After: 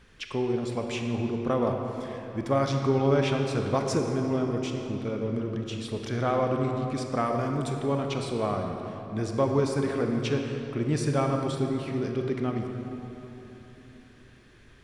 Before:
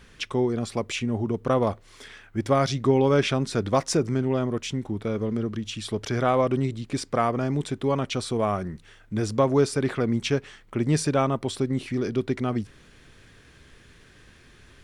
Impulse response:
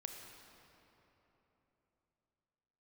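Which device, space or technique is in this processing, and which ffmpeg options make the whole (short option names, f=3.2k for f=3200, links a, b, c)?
swimming-pool hall: -filter_complex "[0:a]asettb=1/sr,asplit=3[a][b][c];[a]atrim=end=7.264[d];[b]atrim=start=7.26:end=7.73,asetpts=PTS-STARTPTS,afade=t=in:d=0.004:c=qsin,afade=t=out:st=0.466:d=0.004:c=qsin,highshelf=f=7.6k:g=12[e];[c]atrim=start=7.726[f];[d][e]acrossfade=d=0.004:c1=hsin:c2=qsin[g];[g][f]acrossfade=d=0.004:c1=qsin:c2=hsin[h];[1:a]atrim=start_sample=2205[i];[h][i]afir=irnorm=-1:irlink=0,highshelf=f=5.1k:g=-5"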